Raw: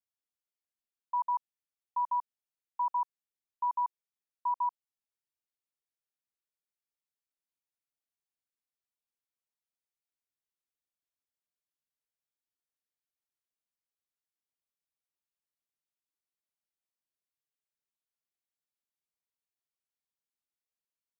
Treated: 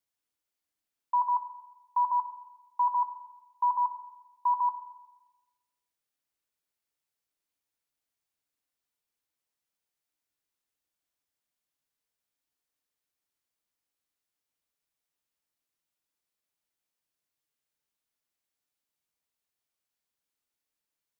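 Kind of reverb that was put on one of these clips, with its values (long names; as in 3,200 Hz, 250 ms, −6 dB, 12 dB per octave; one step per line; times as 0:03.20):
feedback delay network reverb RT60 1.1 s, low-frequency decay 1×, high-frequency decay 0.9×, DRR 8.5 dB
level +5.5 dB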